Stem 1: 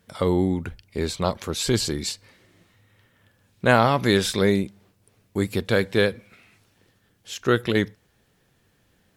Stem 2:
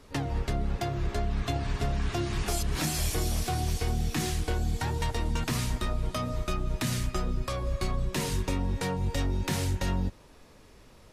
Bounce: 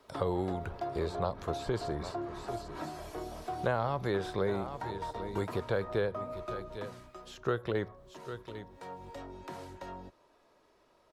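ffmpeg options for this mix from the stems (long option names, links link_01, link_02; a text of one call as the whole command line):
ffmpeg -i stem1.wav -i stem2.wav -filter_complex "[0:a]agate=range=-8dB:threshold=-51dB:ratio=16:detection=peak,volume=-1.5dB,asplit=2[link_01][link_02];[link_02]volume=-17dB[link_03];[1:a]acrossover=split=180 2000:gain=0.0794 1 0.224[link_04][link_05][link_06];[link_04][link_05][link_06]amix=inputs=3:normalize=0,aecho=1:1:3.1:0.36,volume=5dB,afade=type=out:start_time=6.55:duration=0.6:silence=0.298538,afade=type=in:start_time=8.69:duration=0.38:silence=0.473151[link_07];[link_03]aecho=0:1:799:1[link_08];[link_01][link_07][link_08]amix=inputs=3:normalize=0,equalizer=frequency=250:width_type=o:width=1:gain=-10,equalizer=frequency=2000:width_type=o:width=1:gain=-4,equalizer=frequency=4000:width_type=o:width=1:gain=5,acrossover=split=350|1600[link_09][link_10][link_11];[link_09]acompressor=threshold=-36dB:ratio=4[link_12];[link_10]acompressor=threshold=-30dB:ratio=4[link_13];[link_11]acompressor=threshold=-56dB:ratio=4[link_14];[link_12][link_13][link_14]amix=inputs=3:normalize=0" out.wav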